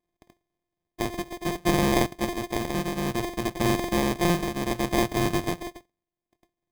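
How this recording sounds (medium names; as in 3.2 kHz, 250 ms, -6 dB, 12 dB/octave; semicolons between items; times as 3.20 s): a buzz of ramps at a fixed pitch in blocks of 128 samples; tremolo triangle 0.61 Hz, depth 65%; aliases and images of a low sample rate 1.4 kHz, jitter 0%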